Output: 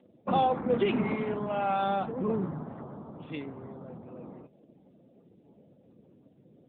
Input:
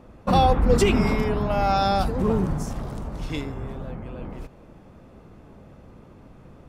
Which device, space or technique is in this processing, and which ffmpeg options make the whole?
mobile call with aggressive noise cancelling: -af "highpass=160,afftdn=nr=33:nf=-46,volume=0.501" -ar 8000 -c:a libopencore_amrnb -b:a 10200

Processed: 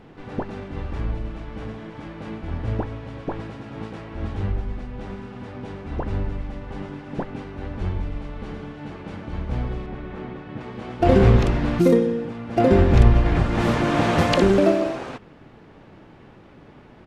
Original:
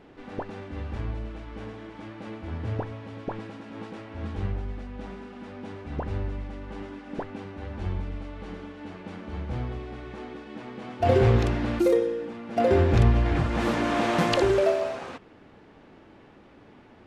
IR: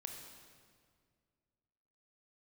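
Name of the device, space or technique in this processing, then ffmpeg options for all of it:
octave pedal: -filter_complex "[0:a]asplit=2[s0][s1];[s1]asetrate=22050,aresample=44100,atempo=2,volume=0.794[s2];[s0][s2]amix=inputs=2:normalize=0,asettb=1/sr,asplit=3[s3][s4][s5];[s3]atrim=end=9.864[s6];[s4]atrim=start=9.86:end=10.61,asetpts=PTS-STARTPTS,afade=t=in:d=0.004:c=qsin,afade=t=out:st=0.746:d=0.004:c=qsin,bass=f=250:g=1,treble=f=4000:g=-11[s7];[s5]atrim=start=10.606[s8];[s6][s7]acrossfade=d=0.004:c1=hsin:c2=qsin[s9];[s9][s8]acrossfade=d=0.004:c1=qsin:c2=hsin,volume=1.41"

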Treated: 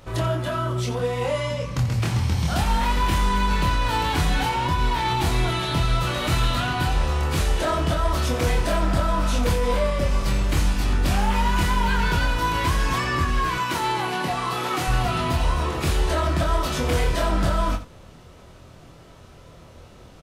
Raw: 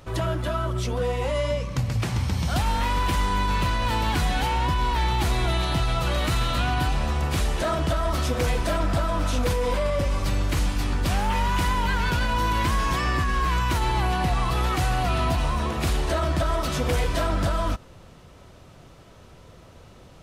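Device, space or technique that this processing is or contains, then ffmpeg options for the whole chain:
slapback doubling: -filter_complex "[0:a]asplit=3[s0][s1][s2];[s1]adelay=25,volume=0.708[s3];[s2]adelay=87,volume=0.251[s4];[s0][s3][s4]amix=inputs=3:normalize=0,asettb=1/sr,asplit=3[s5][s6][s7];[s5]atrim=end=13.584[s8];[s6]atrim=start=13.58:end=14.88,asetpts=PTS-STARTPTS,afade=t=in:d=0.004:c=qsin,afade=t=out:st=1.296:d=0.004:c=qsin,highpass=200[s9];[s7]atrim=start=14.876[s10];[s8][s9]acrossfade=d=0.004:c1=hsin:c2=qsin[s11];[s11][s10]acrossfade=d=0.004:c1=qsin:c2=hsin"

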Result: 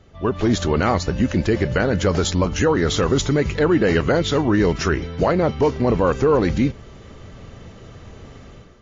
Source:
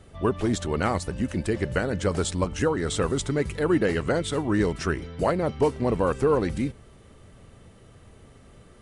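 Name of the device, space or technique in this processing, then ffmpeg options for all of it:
low-bitrate web radio: -af "dynaudnorm=f=150:g=5:m=3.55,alimiter=limit=0.398:level=0:latency=1:release=22" -ar 16000 -c:a libmp3lame -b:a 32k

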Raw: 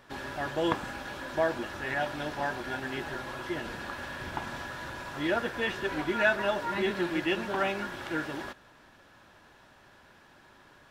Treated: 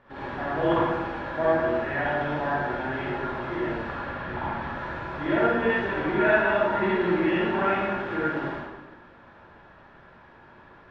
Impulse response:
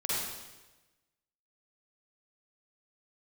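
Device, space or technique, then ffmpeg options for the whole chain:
bathroom: -filter_complex "[0:a]asettb=1/sr,asplit=3[s0][s1][s2];[s0]atrim=end=4.014[s3];[s1]atrim=start=4.01:end=4.66,asetpts=PTS-STARTPTS,afade=t=in:d=0.004:c=qsin,afade=t=out:st=0.646:d=0.004:c=qsin,lowpass=5000[s4];[s2]atrim=start=4.656[s5];[s3][s4]acrossfade=d=0.004:c1=hsin:c2=qsin[s6];[s6][s5]acrossfade=d=0.004:c1=qsin:c2=hsin,lowpass=2000[s7];[1:a]atrim=start_sample=2205[s8];[s7][s8]afir=irnorm=-1:irlink=0"

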